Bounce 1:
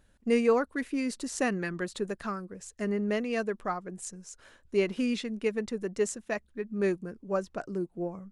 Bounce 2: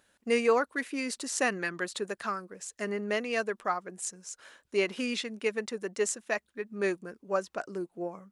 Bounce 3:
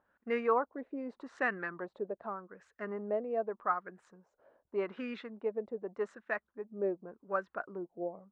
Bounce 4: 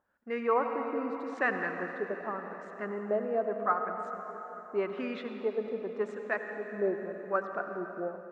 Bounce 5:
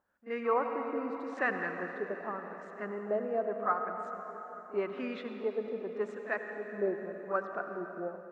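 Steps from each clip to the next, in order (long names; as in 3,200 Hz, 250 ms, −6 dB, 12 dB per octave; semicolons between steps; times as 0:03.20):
high-pass filter 710 Hz 6 dB per octave; level +4.5 dB
dynamic equaliser 3,800 Hz, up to +6 dB, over −56 dBFS, Q 3.9; auto-filter low-pass sine 0.84 Hz 610–1,600 Hz; level −7 dB
convolution reverb RT60 4.3 s, pre-delay 68 ms, DRR 5 dB; automatic gain control gain up to 6 dB; level −3 dB
echo ahead of the sound 41 ms −15.5 dB; level −2 dB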